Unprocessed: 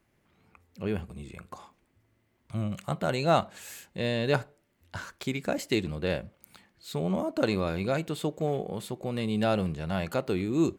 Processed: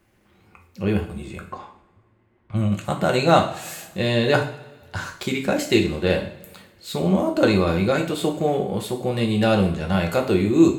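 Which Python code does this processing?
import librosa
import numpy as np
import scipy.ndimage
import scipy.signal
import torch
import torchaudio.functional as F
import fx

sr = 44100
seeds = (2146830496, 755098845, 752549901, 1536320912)

y = fx.env_lowpass(x, sr, base_hz=1900.0, full_db=-29.0, at=(1.48, 2.85))
y = fx.rev_double_slope(y, sr, seeds[0], early_s=0.44, late_s=1.6, knee_db=-18, drr_db=1.5)
y = F.gain(torch.from_numpy(y), 6.5).numpy()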